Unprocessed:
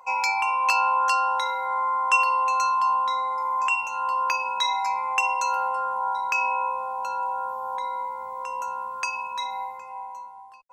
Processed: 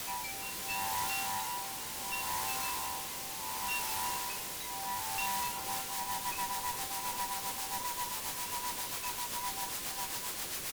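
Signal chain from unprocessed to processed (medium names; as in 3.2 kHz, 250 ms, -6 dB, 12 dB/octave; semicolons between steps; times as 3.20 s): high-pass 62 Hz 24 dB/octave; chord resonator G3 major, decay 0.35 s; in parallel at +1 dB: peak limiter -34.5 dBFS, peak gain reduction 8 dB; on the sum: reverb removal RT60 0.59 s; word length cut 6-bit, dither triangular; rotary cabinet horn 0.7 Hz, later 7.5 Hz, at 5.29 s; one-sided clip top -40 dBFS; on a send: frequency-shifting echo 336 ms, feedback 64%, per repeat +45 Hz, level -17 dB; on the sum: trim +2 dB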